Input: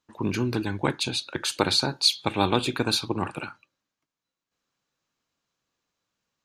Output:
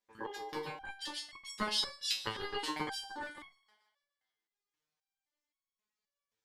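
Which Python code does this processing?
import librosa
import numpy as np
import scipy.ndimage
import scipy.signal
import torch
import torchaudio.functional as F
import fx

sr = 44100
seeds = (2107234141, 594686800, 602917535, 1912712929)

y = fx.low_shelf(x, sr, hz=400.0, db=-4.5)
y = y * np.sin(2.0 * np.pi * 680.0 * np.arange(len(y)) / sr)
y = fx.echo_thinned(y, sr, ms=146, feedback_pct=52, hz=410.0, wet_db=-20.0)
y = fx.resonator_held(y, sr, hz=3.8, low_hz=110.0, high_hz=1100.0)
y = y * 10.0 ** (5.5 / 20.0)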